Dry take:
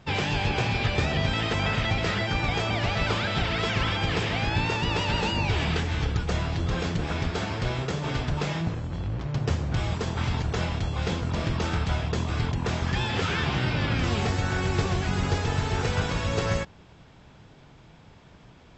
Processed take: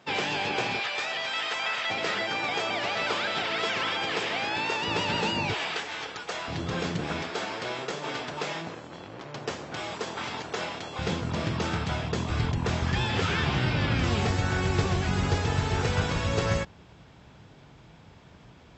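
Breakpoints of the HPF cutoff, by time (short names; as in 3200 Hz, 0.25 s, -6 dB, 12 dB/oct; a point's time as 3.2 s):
280 Hz
from 0.8 s 800 Hz
from 1.9 s 360 Hz
from 4.87 s 170 Hz
from 5.54 s 570 Hz
from 6.48 s 150 Hz
from 7.22 s 350 Hz
from 10.99 s 110 Hz
from 12.3 s 43 Hz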